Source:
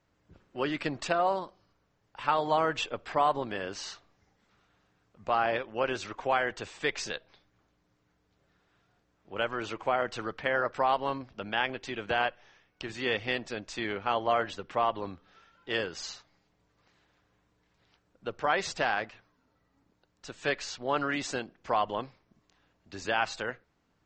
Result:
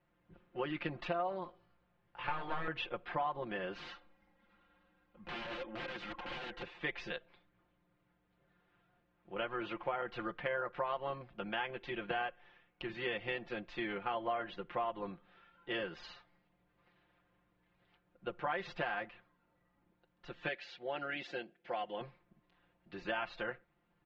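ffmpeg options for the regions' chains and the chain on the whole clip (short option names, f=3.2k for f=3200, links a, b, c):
-filter_complex "[0:a]asettb=1/sr,asplit=3[a][b][c];[a]atrim=end=1.444[d];[b]atrim=start=1.44:end=2.68,asetpts=PTS-STARTPTS,afade=t=in:d=0.004:c=qsin,afade=t=out:st=1.236:d=0.004:c=qsin,aeval=exprs='clip(val(0),-1,0.0211)':c=same,asplit=2[e][f];[f]adelay=18,volume=-5dB[g];[e][g]amix=inputs=2:normalize=0,atrim=end_sample=54684[h];[c]atrim=start=2.676[i];[d][h]acrossfade=d=0.004:c1=hsin:c2=qsin[j];[j][i]acrossfade=d=0.004:c1=qsin:c2=hsin,asettb=1/sr,asplit=3[k][l][m];[k]atrim=end=3.754[n];[l]atrim=start=3.75:end=6.63,asetpts=PTS-STARTPTS,afade=t=in:d=0.004:c=qsin,afade=t=out:st=2.876:d=0.004:c=qsin,acompressor=threshold=-33dB:ratio=6:attack=3.2:release=140:knee=1:detection=peak,aecho=1:1:3.7:0.8,atrim=end_sample=127008,aeval=exprs='(mod(42.2*val(0)+1,2)-1)/42.2':c=same[o];[m]atrim=start=6.626[p];[n][o]acrossfade=d=0.004:c1=hsin:c2=qsin[q];[q][p]acrossfade=d=0.004:c1=qsin:c2=hsin,asettb=1/sr,asplit=3[r][s][t];[r]atrim=end=20.484[u];[s]atrim=start=20.48:end=22.01,asetpts=PTS-STARTPTS,afade=t=in:d=0.004:c=qsin,afade=t=out:st=1.526:d=0.004:c=qsin,highpass=f=430:p=1,equalizer=f=1.1k:t=o:w=0.61:g=-13.5[v];[t]atrim=start=22.006[w];[u][v]acrossfade=d=0.004:c1=hsin:c2=qsin[x];[x][w]acrossfade=d=0.004:c1=qsin:c2=hsin,lowpass=f=3.3k:w=0.5412,lowpass=f=3.3k:w=1.3066,aecho=1:1:5.7:0.84,acompressor=threshold=-29dB:ratio=3,volume=-5.5dB"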